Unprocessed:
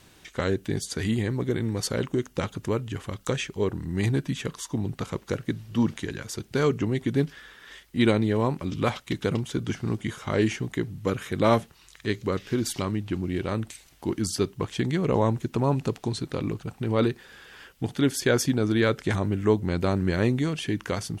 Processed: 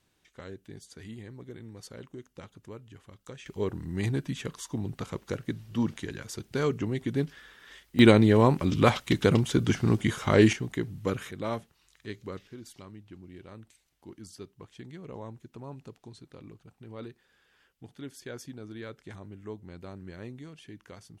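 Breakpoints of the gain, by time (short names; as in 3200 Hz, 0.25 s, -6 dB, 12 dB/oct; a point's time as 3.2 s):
-17.5 dB
from 3.46 s -4.5 dB
from 7.99 s +4 dB
from 10.53 s -3 dB
from 11.31 s -12 dB
from 12.47 s -19 dB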